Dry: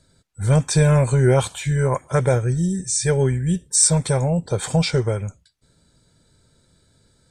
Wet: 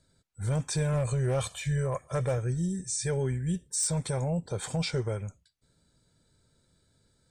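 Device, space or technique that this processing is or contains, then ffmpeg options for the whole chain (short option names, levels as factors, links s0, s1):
clipper into limiter: -filter_complex "[0:a]asettb=1/sr,asplit=3[s0][s1][s2];[s0]atrim=end=0.934[s3];[s1]atrim=start=0.93:end=2.38,asetpts=PTS-STARTPTS,afade=t=in:d=0.004:c=qsin,afade=t=out:st=1.446:d=0.004:c=qsin,aecho=1:1:1.7:0.57,atrim=end_sample=63945[s4];[s2]atrim=start=2.376[s5];[s3][s4]acrossfade=d=0.004:c1=hsin:c2=qsin[s6];[s6][s5]acrossfade=d=0.004:c1=qsin:c2=hsin,asoftclip=type=hard:threshold=0.355,alimiter=limit=0.224:level=0:latency=1:release=11,volume=0.355"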